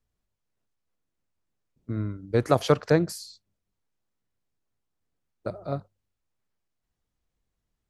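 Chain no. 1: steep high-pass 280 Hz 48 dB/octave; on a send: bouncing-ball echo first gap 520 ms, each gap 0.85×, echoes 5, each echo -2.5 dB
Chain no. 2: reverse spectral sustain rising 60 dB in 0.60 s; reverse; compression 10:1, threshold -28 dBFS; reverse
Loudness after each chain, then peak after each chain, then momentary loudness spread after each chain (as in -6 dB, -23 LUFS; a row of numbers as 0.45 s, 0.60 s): -27.5 LUFS, -35.0 LUFS; -7.0 dBFS, -16.5 dBFS; 20 LU, 13 LU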